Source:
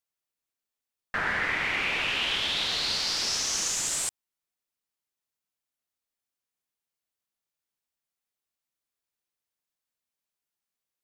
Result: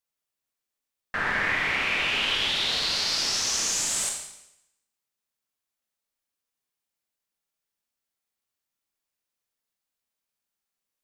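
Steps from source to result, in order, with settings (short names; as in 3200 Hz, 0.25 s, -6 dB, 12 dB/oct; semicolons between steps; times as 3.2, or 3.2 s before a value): Schroeder reverb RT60 0.82 s, combs from 28 ms, DRR 1.5 dB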